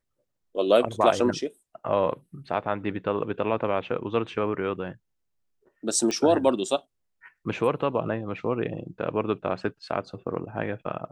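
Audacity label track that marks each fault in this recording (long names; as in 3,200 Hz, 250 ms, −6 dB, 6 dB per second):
6.110000	6.110000	click −16 dBFS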